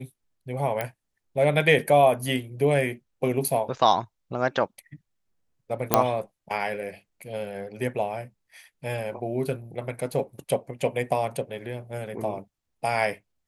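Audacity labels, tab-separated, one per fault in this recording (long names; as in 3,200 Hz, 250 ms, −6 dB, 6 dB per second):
0.810000	0.810000	click −13 dBFS
5.940000	5.940000	click −1 dBFS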